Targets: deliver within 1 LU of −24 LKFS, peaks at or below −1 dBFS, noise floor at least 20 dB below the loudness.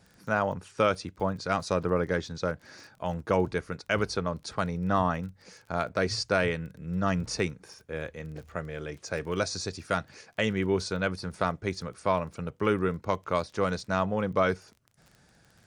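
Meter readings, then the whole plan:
crackle rate 22 per second; integrated loudness −30.0 LKFS; sample peak −10.5 dBFS; target loudness −24.0 LKFS
→ click removal
level +6 dB

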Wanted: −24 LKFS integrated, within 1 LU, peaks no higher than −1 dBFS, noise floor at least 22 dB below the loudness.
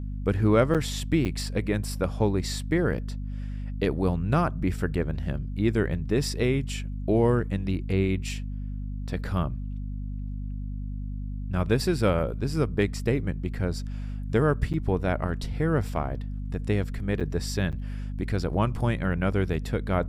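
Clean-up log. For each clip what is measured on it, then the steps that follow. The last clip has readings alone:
number of dropouts 5; longest dropout 7.4 ms; mains hum 50 Hz; hum harmonics up to 250 Hz; level of the hum −30 dBFS; integrated loudness −28.0 LKFS; sample peak −6.5 dBFS; target loudness −24.0 LKFS
→ repair the gap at 0:00.74/0:01.25/0:14.73/0:17.20/0:17.72, 7.4 ms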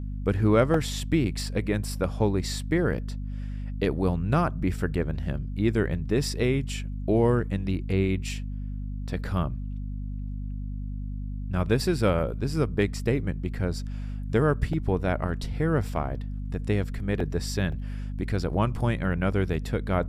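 number of dropouts 0; mains hum 50 Hz; hum harmonics up to 250 Hz; level of the hum −30 dBFS
→ mains-hum notches 50/100/150/200/250 Hz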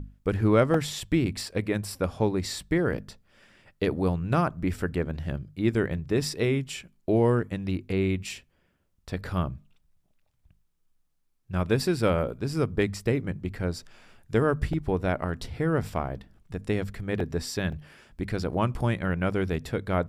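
mains hum none found; integrated loudness −28.0 LKFS; sample peak −7.0 dBFS; target loudness −24.0 LKFS
→ level +4 dB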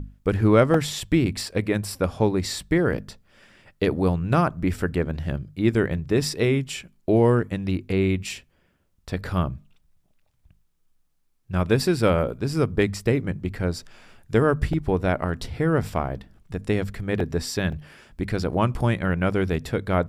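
integrated loudness −24.0 LKFS; sample peak −3.0 dBFS; background noise floor −66 dBFS

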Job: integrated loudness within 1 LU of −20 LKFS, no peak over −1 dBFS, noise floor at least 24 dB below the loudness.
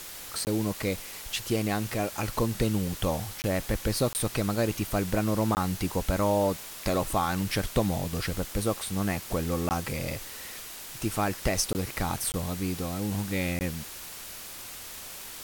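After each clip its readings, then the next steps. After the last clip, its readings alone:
number of dropouts 8; longest dropout 19 ms; background noise floor −42 dBFS; target noise floor −54 dBFS; integrated loudness −30.0 LKFS; sample peak −11.0 dBFS; target loudness −20.0 LKFS
→ repair the gap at 0:00.45/0:03.42/0:04.13/0:05.55/0:09.69/0:11.73/0:12.32/0:13.59, 19 ms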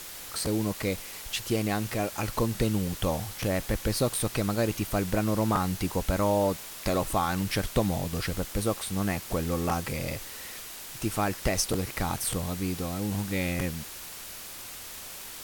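number of dropouts 0; background noise floor −42 dBFS; target noise floor −54 dBFS
→ noise reduction from a noise print 12 dB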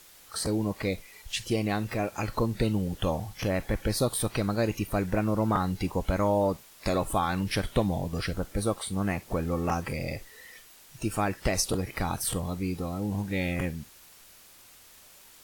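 background noise floor −54 dBFS; integrated loudness −29.5 LKFS; sample peak −11.0 dBFS; target loudness −20.0 LKFS
→ level +9.5 dB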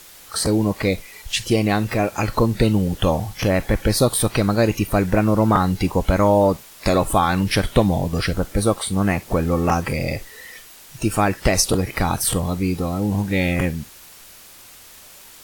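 integrated loudness −20.0 LKFS; sample peak −1.5 dBFS; background noise floor −44 dBFS

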